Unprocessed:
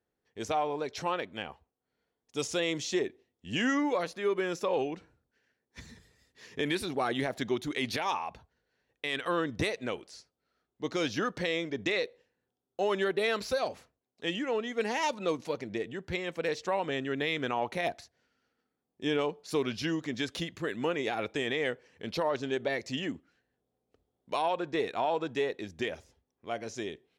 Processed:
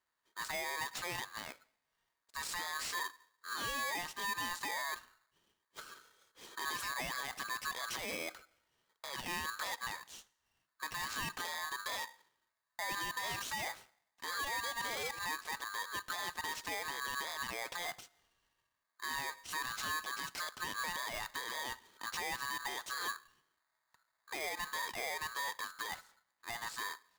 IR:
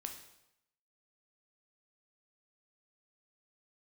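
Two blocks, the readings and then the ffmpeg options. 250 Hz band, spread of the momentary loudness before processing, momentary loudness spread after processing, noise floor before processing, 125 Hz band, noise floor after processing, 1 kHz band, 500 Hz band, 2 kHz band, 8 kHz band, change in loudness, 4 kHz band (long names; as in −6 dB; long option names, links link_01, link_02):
−20.5 dB, 10 LU, 10 LU, −85 dBFS, −15.0 dB, −85 dBFS, −5.0 dB, −18.5 dB, −2.5 dB, +3.0 dB, −6.5 dB, −3.5 dB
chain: -filter_complex "[0:a]alimiter=level_in=5dB:limit=-24dB:level=0:latency=1:release=36,volume=-5dB,asplit=2[link_01][link_02];[1:a]atrim=start_sample=2205[link_03];[link_02][link_03]afir=irnorm=-1:irlink=0,volume=-12.5dB[link_04];[link_01][link_04]amix=inputs=2:normalize=0,aeval=exprs='val(0)*sgn(sin(2*PI*1400*n/s))':channel_layout=same,volume=-3dB"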